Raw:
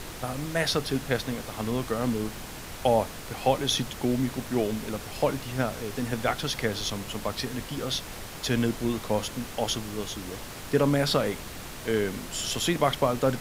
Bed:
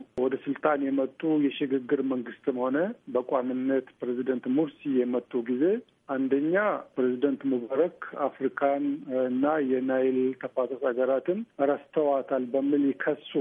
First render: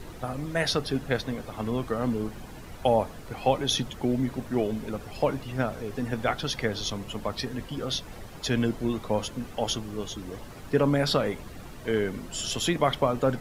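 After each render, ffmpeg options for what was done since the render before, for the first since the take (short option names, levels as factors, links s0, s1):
-af "afftdn=nr=11:nf=-40"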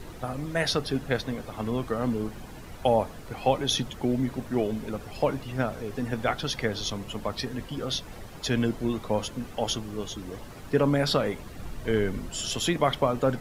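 -filter_complex "[0:a]asettb=1/sr,asplit=3[s0][s1][s2];[s0]atrim=end=11.594[s3];[s1]atrim=start=11.59:end=12.29,asetpts=PTS-STARTPTS,afade=t=in:d=0.004:c=qsin,afade=t=out:st=0.696:d=0.004:c=qsin,lowshelf=f=94:g=10.5[s4];[s2]atrim=start=12.286[s5];[s3][s4]acrossfade=d=0.004:c1=hsin:c2=qsin[s6];[s6][s5]acrossfade=d=0.004:c1=qsin:c2=hsin"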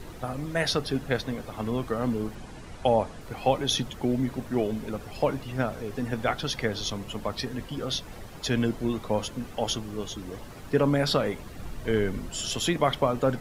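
-filter_complex "[0:a]asettb=1/sr,asplit=3[s0][s1][s2];[s0]atrim=end=2.354[s3];[s1]atrim=start=2.35:end=3.21,asetpts=PTS-STARTPTS,afade=t=in:d=0.004:c=qsin,afade=t=out:st=0.856:d=0.004:c=qsin,lowpass=f=10000:w=0.5412,lowpass=f=10000:w=1.3066[s4];[s2]atrim=start=3.206[s5];[s3][s4]acrossfade=d=0.004:c1=hsin:c2=qsin[s6];[s6][s5]acrossfade=d=0.004:c1=qsin:c2=hsin"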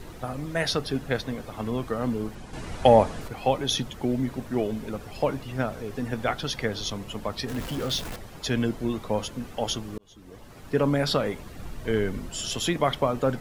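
-filter_complex "[0:a]asettb=1/sr,asplit=3[s0][s1][s2];[s0]atrim=end=2.534[s3];[s1]atrim=start=2.53:end=3.28,asetpts=PTS-STARTPTS,afade=t=in:d=0.004:c=qsin,afade=t=out:st=0.746:d=0.004:c=qsin,acontrast=82[s4];[s2]atrim=start=3.276[s5];[s3][s4]acrossfade=d=0.004:c1=hsin:c2=qsin[s6];[s6][s5]acrossfade=d=0.004:c1=qsin:c2=hsin,asettb=1/sr,asplit=3[s7][s8][s9];[s7]atrim=end=7.484[s10];[s8]atrim=start=7.48:end=8.16,asetpts=PTS-STARTPTS,afade=t=in:d=0.004:c=qsin,afade=t=out:st=0.676:d=0.004:c=qsin,aeval=exprs='val(0)+0.5*0.0237*sgn(val(0))':c=same[s11];[s9]atrim=start=8.156[s12];[s10][s11]acrossfade=d=0.004:c1=hsin:c2=qsin[s13];[s13][s12]acrossfade=d=0.004:c1=qsin:c2=hsin,asplit=2[s14][s15];[s14]atrim=end=9.98,asetpts=PTS-STARTPTS,afade=t=out:st=9.976:d=0.004:c=hsin[s16];[s15]atrim=start=9.98,asetpts=PTS-STARTPTS,afade=t=in:d=0.85[s17];[s16][s17]concat=n=2:v=0:a=1"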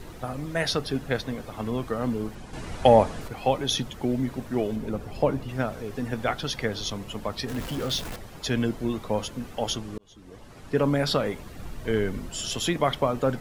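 -filter_complex "[0:a]asettb=1/sr,asplit=3[s0][s1][s2];[s0]atrim=end=4.764[s3];[s1]atrim=start=4.76:end=5.49,asetpts=PTS-STARTPTS,afade=t=in:d=0.004:c=qsin,afade=t=out:st=0.726:d=0.004:c=qsin,tiltshelf=f=970:g=4[s4];[s2]atrim=start=5.486[s5];[s3][s4]acrossfade=d=0.004:c1=hsin:c2=qsin[s6];[s6][s5]acrossfade=d=0.004:c1=qsin:c2=hsin,asettb=1/sr,asplit=3[s7][s8][s9];[s7]atrim=end=9.764[s10];[s8]atrim=start=9.76:end=10.76,asetpts=PTS-STARTPTS,afade=t=in:d=0.004:c=qsin,afade=t=out:st=0.996:d=0.004:c=qsin,lowpass=11000[s11];[s9]atrim=start=10.756[s12];[s10][s11]acrossfade=d=0.004:c1=hsin:c2=qsin[s13];[s13][s12]acrossfade=d=0.004:c1=qsin:c2=hsin"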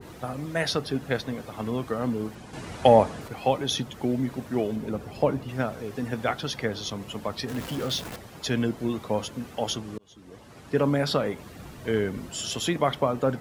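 -af "highpass=82,adynamicequalizer=threshold=0.0141:dfrequency=1900:dqfactor=0.7:tfrequency=1900:tqfactor=0.7:attack=5:release=100:ratio=0.375:range=2:mode=cutabove:tftype=highshelf"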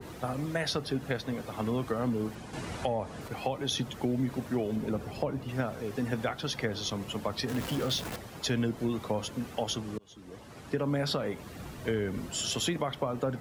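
-filter_complex "[0:a]alimiter=limit=0.178:level=0:latency=1:release=387,acrossover=split=130[s0][s1];[s1]acompressor=threshold=0.0447:ratio=6[s2];[s0][s2]amix=inputs=2:normalize=0"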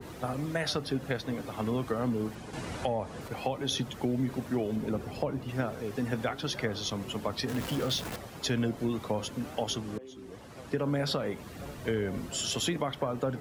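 -filter_complex "[1:a]volume=0.0668[s0];[0:a][s0]amix=inputs=2:normalize=0"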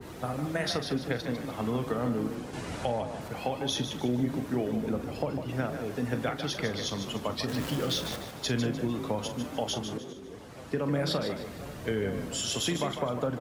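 -filter_complex "[0:a]asplit=2[s0][s1];[s1]adelay=41,volume=0.266[s2];[s0][s2]amix=inputs=2:normalize=0,asplit=5[s3][s4][s5][s6][s7];[s4]adelay=150,afreqshift=31,volume=0.376[s8];[s5]adelay=300,afreqshift=62,volume=0.132[s9];[s6]adelay=450,afreqshift=93,volume=0.0462[s10];[s7]adelay=600,afreqshift=124,volume=0.016[s11];[s3][s8][s9][s10][s11]amix=inputs=5:normalize=0"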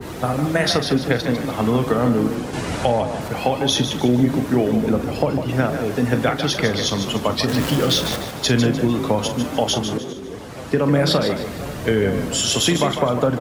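-af "volume=3.98"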